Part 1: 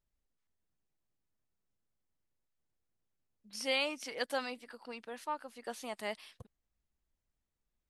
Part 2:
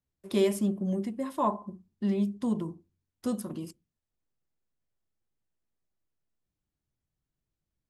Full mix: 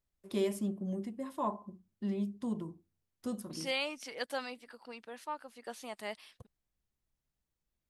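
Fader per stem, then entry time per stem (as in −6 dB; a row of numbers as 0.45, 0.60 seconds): −2.0, −7.0 decibels; 0.00, 0.00 seconds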